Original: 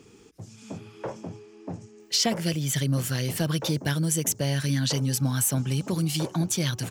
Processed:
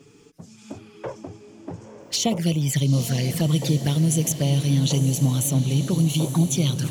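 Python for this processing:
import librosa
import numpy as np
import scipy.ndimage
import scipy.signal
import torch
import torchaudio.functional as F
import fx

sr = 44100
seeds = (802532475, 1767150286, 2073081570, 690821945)

y = fx.peak_eq(x, sr, hz=160.0, db=3.0, octaves=0.75)
y = fx.env_flanger(y, sr, rest_ms=7.9, full_db=-21.5)
y = fx.echo_diffused(y, sr, ms=903, feedback_pct=56, wet_db=-10.0)
y = F.gain(torch.from_numpy(y), 3.5).numpy()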